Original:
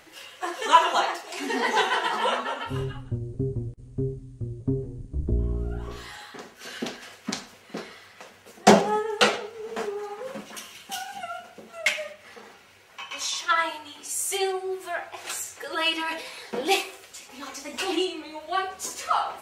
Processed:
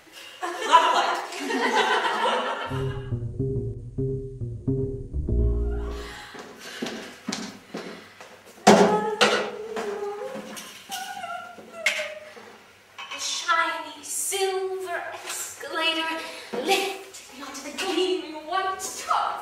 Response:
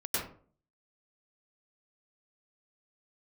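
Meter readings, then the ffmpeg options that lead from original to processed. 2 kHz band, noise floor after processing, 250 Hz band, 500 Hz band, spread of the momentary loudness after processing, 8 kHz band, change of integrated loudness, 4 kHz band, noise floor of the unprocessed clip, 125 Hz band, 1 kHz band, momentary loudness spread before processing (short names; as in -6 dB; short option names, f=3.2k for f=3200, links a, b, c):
+1.5 dB, -48 dBFS, +2.0 dB, +2.0 dB, 17 LU, +1.0 dB, +1.5 dB, +1.0 dB, -52 dBFS, +2.0 dB, +1.5 dB, 18 LU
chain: -filter_complex "[0:a]asplit=2[a][b];[1:a]atrim=start_sample=2205[c];[b][c]afir=irnorm=-1:irlink=0,volume=-10.5dB[d];[a][d]amix=inputs=2:normalize=0,volume=-1dB"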